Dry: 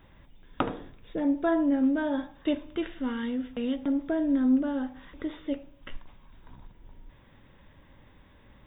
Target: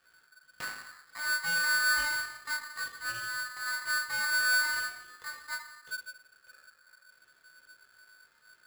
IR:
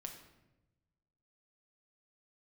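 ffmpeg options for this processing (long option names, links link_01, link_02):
-filter_complex "[0:a]aeval=exprs='(tanh(17.8*val(0)+0.7)-tanh(0.7))/17.8':channel_layout=same[link_01];[1:a]atrim=start_sample=2205,afade=type=out:start_time=0.44:duration=0.01,atrim=end_sample=19845,asetrate=48510,aresample=44100[link_02];[link_01][link_02]afir=irnorm=-1:irlink=0,flanger=delay=16.5:depth=3.5:speed=0.68,aeval=exprs='val(0)*sgn(sin(2*PI*1500*n/s))':channel_layout=same"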